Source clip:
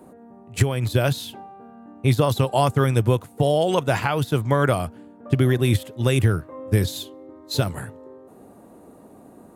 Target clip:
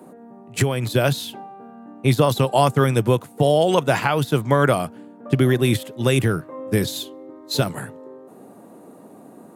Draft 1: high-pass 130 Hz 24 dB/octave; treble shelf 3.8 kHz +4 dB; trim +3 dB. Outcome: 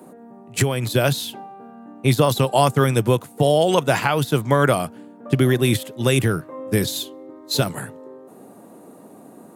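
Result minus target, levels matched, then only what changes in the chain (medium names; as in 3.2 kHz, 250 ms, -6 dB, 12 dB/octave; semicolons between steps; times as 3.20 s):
8 kHz band +3.0 dB
remove: treble shelf 3.8 kHz +4 dB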